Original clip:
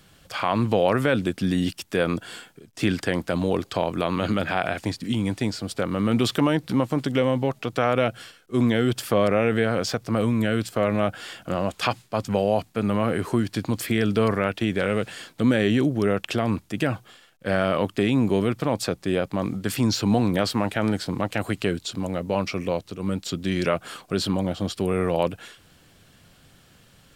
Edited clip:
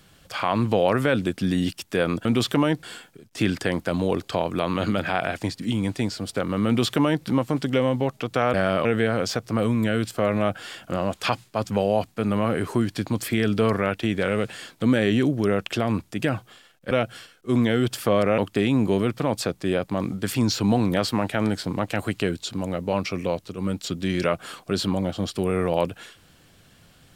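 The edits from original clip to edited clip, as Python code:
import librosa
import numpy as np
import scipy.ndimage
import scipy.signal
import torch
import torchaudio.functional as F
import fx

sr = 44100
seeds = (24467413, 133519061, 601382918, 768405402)

y = fx.edit(x, sr, fx.duplicate(start_s=6.09, length_s=0.58, to_s=2.25),
    fx.swap(start_s=7.96, length_s=1.47, other_s=17.49, other_length_s=0.31), tone=tone)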